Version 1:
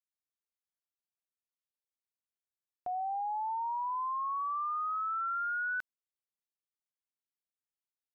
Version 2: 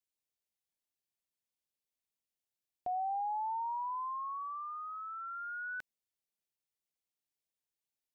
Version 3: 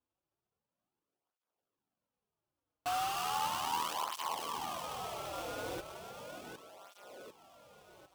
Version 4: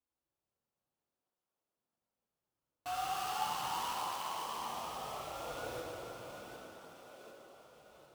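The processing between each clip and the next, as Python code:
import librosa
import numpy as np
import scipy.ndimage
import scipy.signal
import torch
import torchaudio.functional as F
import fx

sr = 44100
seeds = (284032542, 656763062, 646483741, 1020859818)

y1 = fx.peak_eq(x, sr, hz=1300.0, db=-11.0, octaves=0.71)
y1 = F.gain(torch.from_numpy(y1), 2.0).numpy()
y2 = fx.echo_split(y1, sr, split_hz=1200.0, low_ms=300, high_ms=752, feedback_pct=52, wet_db=-6.0)
y2 = fx.sample_hold(y2, sr, seeds[0], rate_hz=2000.0, jitter_pct=20)
y2 = fx.flanger_cancel(y2, sr, hz=0.36, depth_ms=5.4)
y2 = F.gain(torch.from_numpy(y2), 2.5).numpy()
y3 = fx.rev_plate(y2, sr, seeds[1], rt60_s=3.2, hf_ratio=0.75, predelay_ms=0, drr_db=-2.5)
y3 = F.gain(torch.from_numpy(y3), -6.5).numpy()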